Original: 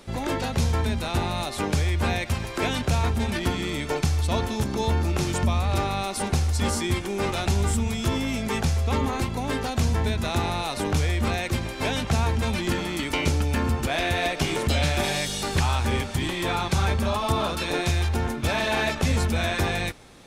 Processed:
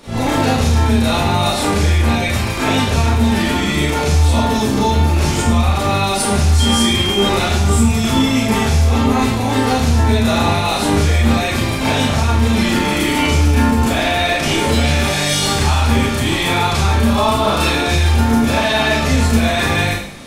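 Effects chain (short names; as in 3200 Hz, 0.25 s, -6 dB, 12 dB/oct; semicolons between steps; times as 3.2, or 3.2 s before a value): limiter -19.5 dBFS, peak gain reduction 10.5 dB; Schroeder reverb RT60 0.6 s, combs from 27 ms, DRR -9 dB; 6.59–7.28 whine 3200 Hz -22 dBFS; gain +4 dB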